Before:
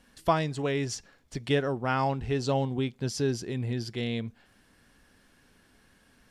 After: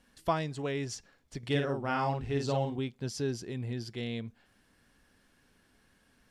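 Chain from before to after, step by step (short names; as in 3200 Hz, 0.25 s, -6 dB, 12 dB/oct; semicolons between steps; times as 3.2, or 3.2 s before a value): 1.38–2.76 doubler 50 ms -3.5 dB; gain -5 dB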